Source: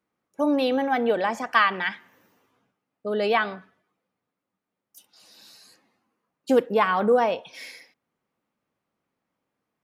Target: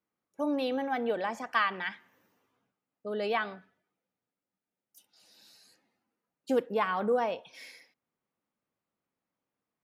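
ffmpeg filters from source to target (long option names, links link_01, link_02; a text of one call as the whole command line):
ffmpeg -i in.wav -filter_complex "[0:a]asettb=1/sr,asplit=3[link_01][link_02][link_03];[link_01]atrim=end=3.534[link_04];[link_02]atrim=start=3.53:end=6.55,asetpts=PTS-STARTPTS,afade=type=in:duration=0.004:curve=qsin,afade=type=out:start_time=3.016:duration=0.004:curve=qsin,bandreject=frequency=1100:width=6.5[link_05];[link_03]atrim=start=6.546[link_06];[link_04][link_05]acrossfade=duration=0.004:curve1=hsin:curve2=qsin[link_07];[link_07][link_06]acrossfade=duration=0.004:curve1=qsin:curve2=hsin,volume=-8dB" out.wav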